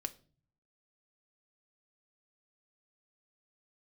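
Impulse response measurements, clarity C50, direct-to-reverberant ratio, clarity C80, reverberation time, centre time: 19.0 dB, 8.5 dB, 23.5 dB, 0.40 s, 3 ms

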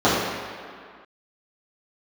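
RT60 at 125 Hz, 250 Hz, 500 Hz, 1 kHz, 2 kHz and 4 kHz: 1.5 s, 2.0 s, 1.9 s, 2.2 s, can't be measured, 1.6 s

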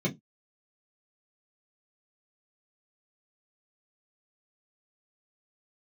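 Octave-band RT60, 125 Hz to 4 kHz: 0.20, 0.20, 0.20, 0.15, 0.10, 0.15 seconds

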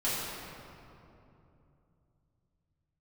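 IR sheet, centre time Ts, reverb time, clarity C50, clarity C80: 160 ms, 2.9 s, −2.5 dB, −0.5 dB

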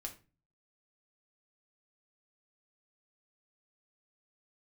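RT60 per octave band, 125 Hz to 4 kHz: 0.65, 0.50, 0.35, 0.30, 0.30, 0.25 seconds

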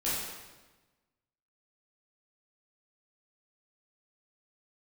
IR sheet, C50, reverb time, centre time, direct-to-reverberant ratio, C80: −1.5 dB, 1.2 s, 90 ms, −10.0 dB, 1.5 dB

